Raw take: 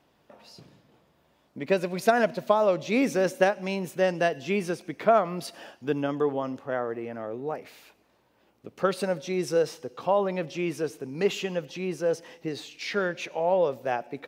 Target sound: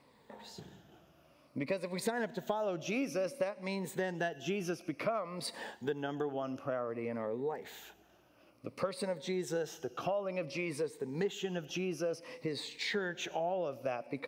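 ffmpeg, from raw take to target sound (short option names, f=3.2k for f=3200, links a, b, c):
-af "afftfilt=real='re*pow(10,10/40*sin(2*PI*(0.96*log(max(b,1)*sr/1024/100)/log(2)-(-0.56)*(pts-256)/sr)))':imag='im*pow(10,10/40*sin(2*PI*(0.96*log(max(b,1)*sr/1024/100)/log(2)-(-0.56)*(pts-256)/sr)))':win_size=1024:overlap=0.75,acompressor=threshold=-34dB:ratio=4"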